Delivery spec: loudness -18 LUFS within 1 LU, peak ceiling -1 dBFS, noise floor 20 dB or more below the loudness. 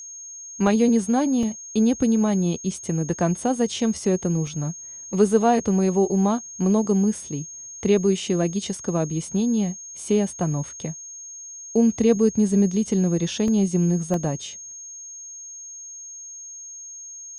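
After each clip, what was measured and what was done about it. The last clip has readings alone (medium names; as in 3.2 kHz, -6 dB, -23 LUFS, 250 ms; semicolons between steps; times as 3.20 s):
dropouts 6; longest dropout 1.4 ms; steady tone 6.5 kHz; tone level -36 dBFS; loudness -22.5 LUFS; peak level -6.0 dBFS; loudness target -18.0 LUFS
-> interpolate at 0.67/1.43/2.77/4.47/13.48/14.14 s, 1.4 ms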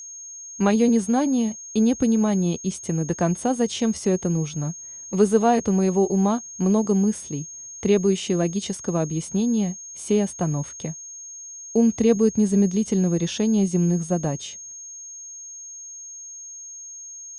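dropouts 0; steady tone 6.5 kHz; tone level -36 dBFS
-> band-stop 6.5 kHz, Q 30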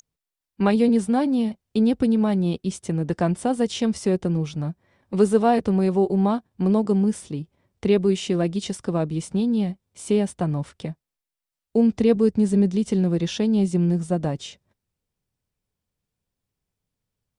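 steady tone not found; loudness -22.5 LUFS; peak level -6.5 dBFS; loudness target -18.0 LUFS
-> trim +4.5 dB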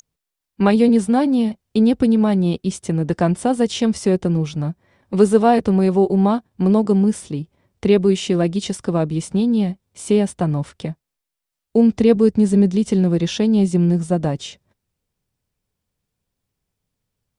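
loudness -18.0 LUFS; peak level -2.0 dBFS; noise floor -83 dBFS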